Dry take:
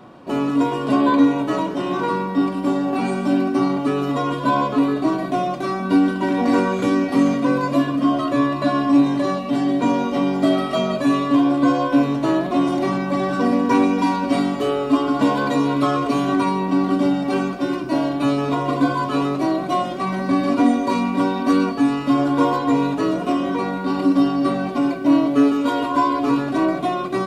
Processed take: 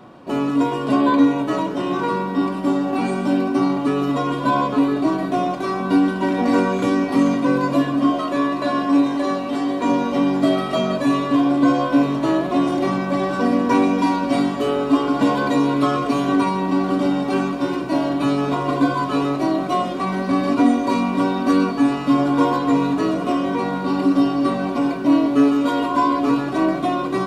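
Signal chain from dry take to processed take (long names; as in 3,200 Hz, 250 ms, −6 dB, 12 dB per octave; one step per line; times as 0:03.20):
0:08.10–0:09.89: parametric band 120 Hz −12 dB 1.3 octaves
on a send: feedback delay with all-pass diffusion 1,371 ms, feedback 78%, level −15.5 dB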